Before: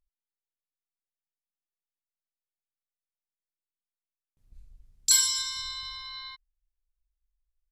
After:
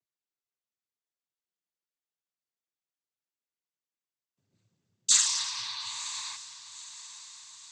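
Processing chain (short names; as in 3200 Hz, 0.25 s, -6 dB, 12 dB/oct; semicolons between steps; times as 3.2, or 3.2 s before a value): noise vocoder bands 16; diffused feedback echo 0.965 s, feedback 53%, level -14 dB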